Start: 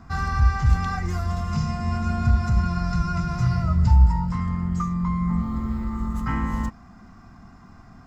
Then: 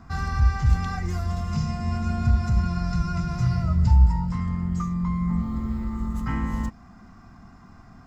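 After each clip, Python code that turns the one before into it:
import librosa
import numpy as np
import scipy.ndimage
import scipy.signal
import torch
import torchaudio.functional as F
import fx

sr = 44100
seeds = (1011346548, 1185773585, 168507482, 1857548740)

y = fx.dynamic_eq(x, sr, hz=1200.0, q=1.2, threshold_db=-43.0, ratio=4.0, max_db=-4)
y = F.gain(torch.from_numpy(y), -1.0).numpy()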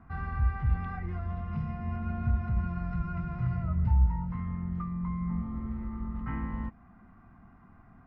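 y = scipy.signal.sosfilt(scipy.signal.butter(4, 2500.0, 'lowpass', fs=sr, output='sos'), x)
y = F.gain(torch.from_numpy(y), -7.5).numpy()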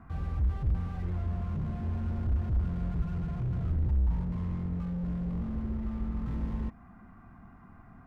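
y = fx.slew_limit(x, sr, full_power_hz=3.1)
y = F.gain(torch.from_numpy(y), 3.0).numpy()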